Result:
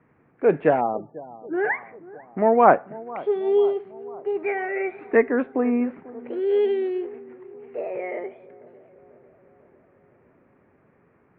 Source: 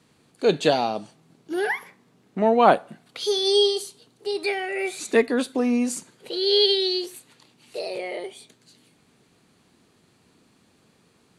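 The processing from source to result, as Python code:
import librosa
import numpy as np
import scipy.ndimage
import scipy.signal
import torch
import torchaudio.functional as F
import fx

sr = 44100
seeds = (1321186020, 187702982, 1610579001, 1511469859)

y = scipy.signal.sosfilt(scipy.signal.butter(8, 2200.0, 'lowpass', fs=sr, output='sos'), x)
y = fx.peak_eq(y, sr, hz=200.0, db=-3.5, octaves=0.57)
y = fx.echo_bbd(y, sr, ms=494, stages=4096, feedback_pct=60, wet_db=-19)
y = fx.spec_topn(y, sr, count=32, at=(0.8, 1.53), fade=0.02)
y = y * 10.0 ** (1.5 / 20.0)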